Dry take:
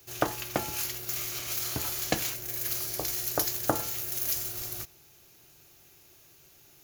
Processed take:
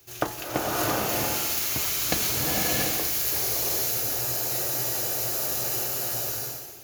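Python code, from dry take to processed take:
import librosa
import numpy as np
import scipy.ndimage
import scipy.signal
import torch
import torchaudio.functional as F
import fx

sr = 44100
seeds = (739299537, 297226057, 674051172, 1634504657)

y = fx.spec_freeze(x, sr, seeds[0], at_s=3.34, hold_s=2.49)
y = fx.rev_bloom(y, sr, seeds[1], attack_ms=670, drr_db=-6.0)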